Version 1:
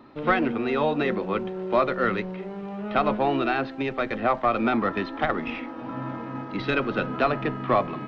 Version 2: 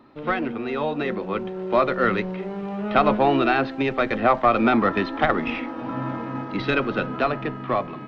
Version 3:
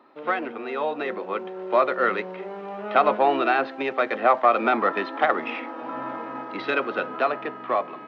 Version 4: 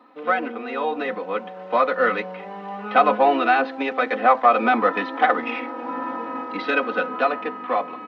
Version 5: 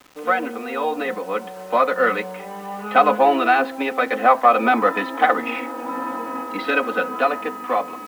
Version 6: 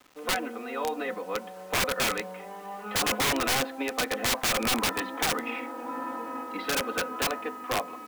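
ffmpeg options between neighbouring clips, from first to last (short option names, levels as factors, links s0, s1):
-af "dynaudnorm=f=310:g=11:m=2.82,volume=0.75"
-af "highpass=450,highshelf=f=3100:g=-9,volume=1.19"
-af "aecho=1:1:4:0.92"
-af "acrusher=bits=7:mix=0:aa=0.000001,volume=1.19"
-af "bandreject=f=50:t=h:w=6,bandreject=f=100:t=h:w=6,bandreject=f=150:t=h:w=6,bandreject=f=200:t=h:w=6,aeval=exprs='(mod(4.22*val(0)+1,2)-1)/4.22':c=same,volume=0.422"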